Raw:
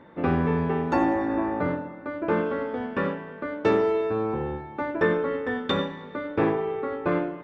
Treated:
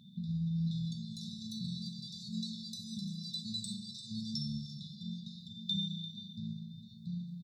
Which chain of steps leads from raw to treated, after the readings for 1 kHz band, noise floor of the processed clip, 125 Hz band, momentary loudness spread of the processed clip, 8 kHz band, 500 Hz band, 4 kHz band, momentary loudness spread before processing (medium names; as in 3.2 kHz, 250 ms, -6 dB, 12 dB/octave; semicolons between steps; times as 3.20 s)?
under -40 dB, -52 dBFS, -6.0 dB, 9 LU, no reading, under -40 dB, +2.0 dB, 9 LU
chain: compression, threshold -24 dBFS, peak gain reduction 7.5 dB; ever faster or slower copies 553 ms, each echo +7 st, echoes 2; high-pass 120 Hz 24 dB/octave; treble shelf 2.6 kHz +9.5 dB; peak limiter -23.5 dBFS, peak gain reduction 12.5 dB; tone controls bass -5 dB, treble -9 dB; FFT band-reject 230–3500 Hz; delay 345 ms -14 dB; trim +6.5 dB